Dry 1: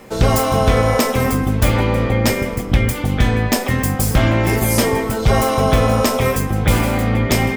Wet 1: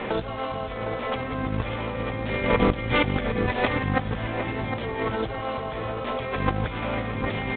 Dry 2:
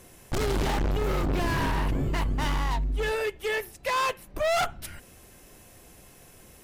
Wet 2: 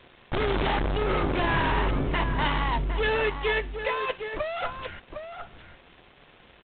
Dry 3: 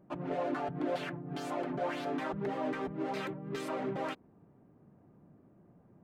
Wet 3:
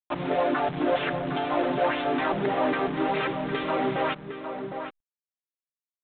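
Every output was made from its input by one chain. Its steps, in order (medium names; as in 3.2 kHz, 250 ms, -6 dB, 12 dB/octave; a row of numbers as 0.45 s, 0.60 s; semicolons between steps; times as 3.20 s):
bass shelf 370 Hz -7 dB; peak limiter -13 dBFS; compressor with a negative ratio -29 dBFS, ratio -0.5; bit crusher 8-bit; echo from a far wall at 130 m, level -7 dB; IMA ADPCM 32 kbps 8 kHz; normalise loudness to -27 LUFS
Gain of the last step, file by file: +4.0 dB, +4.5 dB, +12.0 dB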